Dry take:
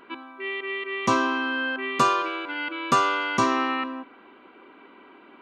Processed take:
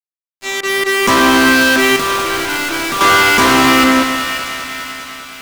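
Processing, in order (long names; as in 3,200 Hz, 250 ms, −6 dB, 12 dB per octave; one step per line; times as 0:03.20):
fade in at the beginning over 1.55 s
fuzz pedal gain 40 dB, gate −39 dBFS
echo with a time of its own for lows and highs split 1,700 Hz, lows 130 ms, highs 539 ms, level −8.5 dB
0:01.96–0:03.01: hard clipping −21.5 dBFS, distortion −9 dB
feedback echo at a low word length 202 ms, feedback 80%, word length 7 bits, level −12 dB
level +3.5 dB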